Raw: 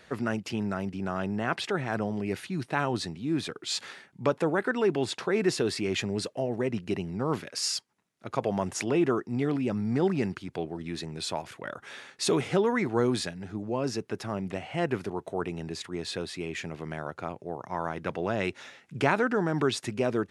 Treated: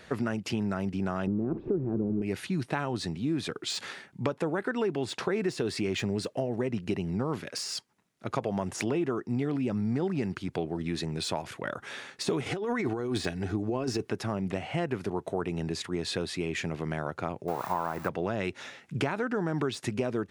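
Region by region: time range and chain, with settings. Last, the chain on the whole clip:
1.27–2.22 delta modulation 64 kbps, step -29.5 dBFS + synth low-pass 360 Hz, resonance Q 3.1 + comb 0.8 ms, depth 31%
12.46–14.1 comb 2.7 ms, depth 38% + negative-ratio compressor -31 dBFS
17.48–18.09 switching spikes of -25 dBFS + bell 1100 Hz +12 dB 1.7 oct + notch 3100 Hz, Q 14
whole clip: de-esser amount 75%; low shelf 330 Hz +3 dB; compressor, threshold -29 dBFS; gain +3 dB

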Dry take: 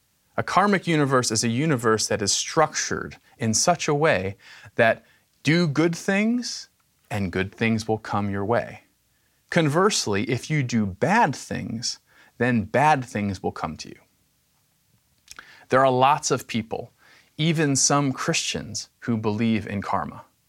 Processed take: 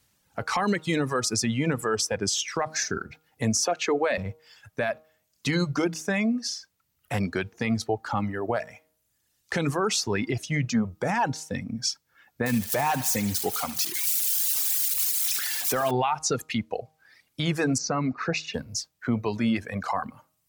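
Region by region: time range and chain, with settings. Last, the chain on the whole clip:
3.59–4.18 HPF 250 Hz 24 dB/oct + low shelf 500 Hz +5.5 dB
12.46–15.91 switching spikes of -17 dBFS + thinning echo 75 ms, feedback 78%, high-pass 730 Hz, level -8 dB
17.78–18.54 Butterworth band-stop 3200 Hz, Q 4.7 + air absorption 180 m
whole clip: de-hum 156.9 Hz, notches 9; reverb removal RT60 1.5 s; limiter -15.5 dBFS

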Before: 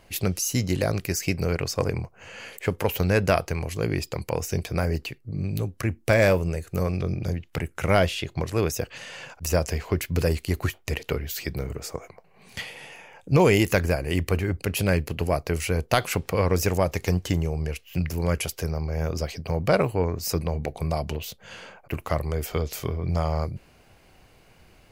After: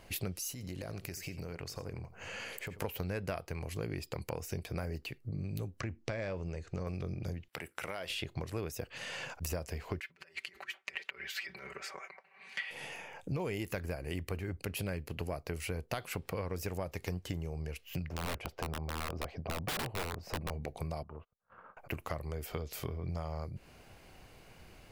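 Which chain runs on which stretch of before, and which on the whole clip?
0.52–2.82 compressor 8:1, threshold -37 dBFS + echo 87 ms -15 dB
5.8–6.87 LPF 6400 Hz 24 dB/oct + compressor 2:1, threshold -25 dBFS
7.48–8.1 HPF 650 Hz 6 dB/oct + compressor 3:1, threshold -33 dBFS + notch 6600 Hz, Q 5.4
10–12.71 negative-ratio compressor -31 dBFS, ratio -0.5 + band-pass 1900 Hz, Q 1.6 + comb 5.2 ms, depth 85%
18.08–20.51 EQ curve 150 Hz 0 dB, 450 Hz +1 dB, 660 Hz +7 dB, 5600 Hz -15 dB, 9800 Hz -25 dB + wrapped overs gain 17.5 dB
21.03–21.77 ladder low-pass 1300 Hz, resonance 75% + gate -53 dBFS, range -28 dB
whole clip: dynamic EQ 6400 Hz, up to -5 dB, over -49 dBFS, Q 2.4; compressor 5:1, threshold -35 dBFS; gain -1 dB

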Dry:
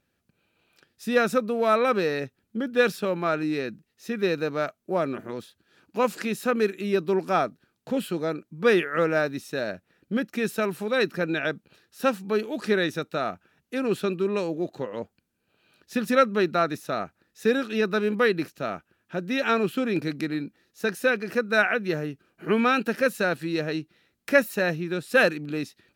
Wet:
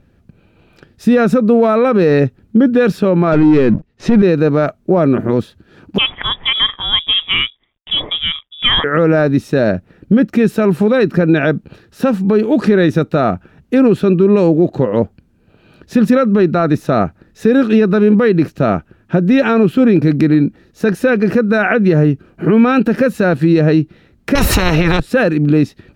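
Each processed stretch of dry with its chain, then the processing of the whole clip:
3.32–4.22 sample leveller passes 3 + air absorption 78 m
5.98–8.84 G.711 law mismatch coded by A + air absorption 160 m + inverted band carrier 3600 Hz
24.35–25 tilt -2.5 dB/oct + spectral compressor 10:1
whole clip: tilt -3.5 dB/oct; compressor 2:1, threshold -22 dBFS; maximiser +17.5 dB; gain -2 dB

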